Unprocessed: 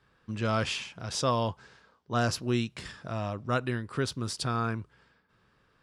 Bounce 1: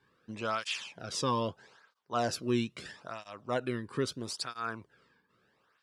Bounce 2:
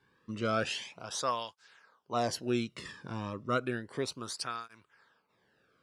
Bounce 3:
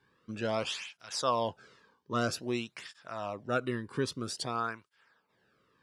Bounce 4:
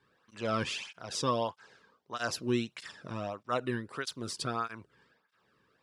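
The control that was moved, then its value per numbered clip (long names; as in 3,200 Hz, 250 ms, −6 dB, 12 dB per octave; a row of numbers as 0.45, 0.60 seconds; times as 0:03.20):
through-zero flanger with one copy inverted, nulls at: 0.77, 0.32, 0.51, 1.6 Hertz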